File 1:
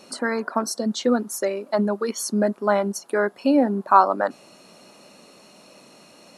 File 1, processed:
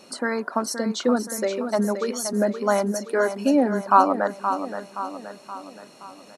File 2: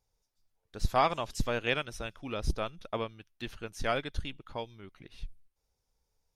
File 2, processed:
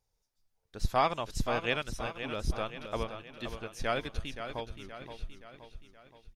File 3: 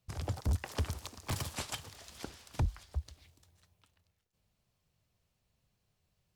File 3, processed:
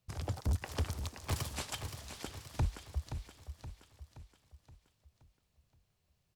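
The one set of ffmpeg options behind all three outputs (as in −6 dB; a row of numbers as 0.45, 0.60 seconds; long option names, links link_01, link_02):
-af "aecho=1:1:523|1046|1569|2092|2615|3138:0.355|0.177|0.0887|0.0444|0.0222|0.0111,volume=-1dB"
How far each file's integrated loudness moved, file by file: −1.0, −1.0, −1.0 LU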